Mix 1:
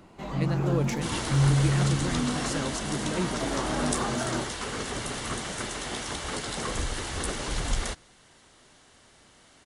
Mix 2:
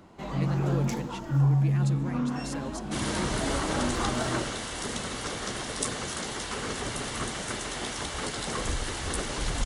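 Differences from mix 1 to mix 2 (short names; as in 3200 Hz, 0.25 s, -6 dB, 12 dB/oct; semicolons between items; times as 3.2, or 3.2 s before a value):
speech -5.5 dB; second sound: entry +1.90 s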